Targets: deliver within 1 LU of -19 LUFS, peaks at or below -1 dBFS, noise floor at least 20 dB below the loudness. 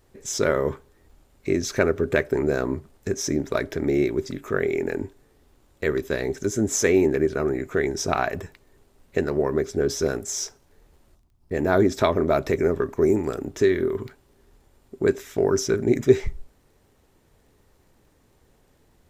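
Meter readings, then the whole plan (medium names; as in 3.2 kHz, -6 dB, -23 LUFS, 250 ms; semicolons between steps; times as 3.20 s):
tick rate 17 per s; loudness -24.0 LUFS; peak level -3.0 dBFS; loudness target -19.0 LUFS
-> de-click; trim +5 dB; peak limiter -1 dBFS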